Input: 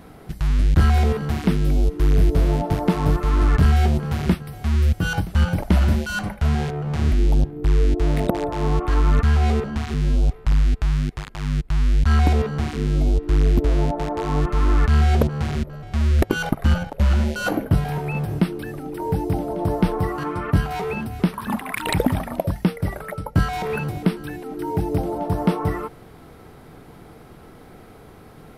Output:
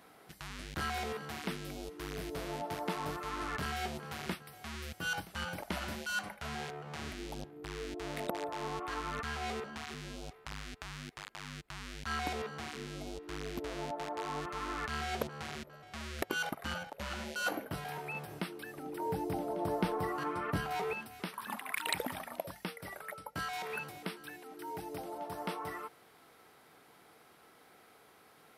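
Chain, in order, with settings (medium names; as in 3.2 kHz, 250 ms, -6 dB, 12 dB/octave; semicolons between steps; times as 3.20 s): high-pass 1 kHz 6 dB/octave, from 18.77 s 440 Hz, from 20.93 s 1.4 kHz; trim -7 dB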